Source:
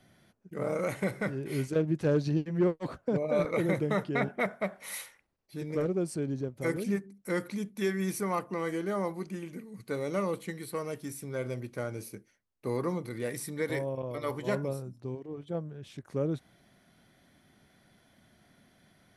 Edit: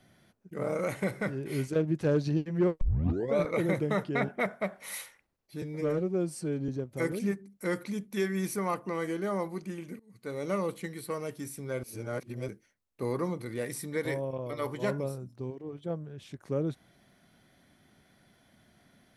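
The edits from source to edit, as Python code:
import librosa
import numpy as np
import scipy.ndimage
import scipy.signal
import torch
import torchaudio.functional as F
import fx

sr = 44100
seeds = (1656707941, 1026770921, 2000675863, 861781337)

y = fx.edit(x, sr, fx.tape_start(start_s=2.81, length_s=0.55),
    fx.stretch_span(start_s=5.62, length_s=0.71, factor=1.5),
    fx.fade_in_from(start_s=9.64, length_s=0.51, floor_db=-20.0),
    fx.reverse_span(start_s=11.48, length_s=0.65), tone=tone)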